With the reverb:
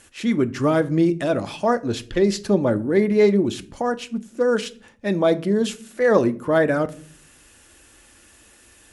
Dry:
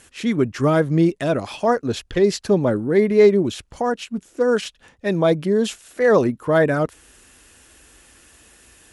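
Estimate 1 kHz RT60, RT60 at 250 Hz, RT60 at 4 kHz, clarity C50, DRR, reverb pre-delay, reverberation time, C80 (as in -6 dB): 0.40 s, 0.80 s, 0.30 s, 20.0 dB, 10.5 dB, 3 ms, 0.45 s, 25.0 dB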